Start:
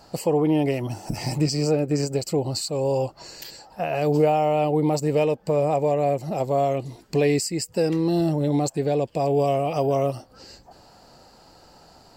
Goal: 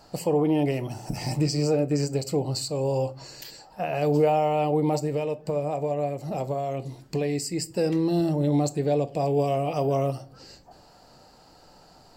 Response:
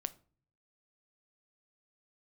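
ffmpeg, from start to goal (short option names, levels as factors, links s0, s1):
-filter_complex "[0:a]asplit=3[s0][s1][s2];[s0]afade=t=out:st=4.97:d=0.02[s3];[s1]acompressor=threshold=0.0794:ratio=6,afade=t=in:st=4.97:d=0.02,afade=t=out:st=7.51:d=0.02[s4];[s2]afade=t=in:st=7.51:d=0.02[s5];[s3][s4][s5]amix=inputs=3:normalize=0[s6];[1:a]atrim=start_sample=2205[s7];[s6][s7]afir=irnorm=-1:irlink=0,volume=0.841"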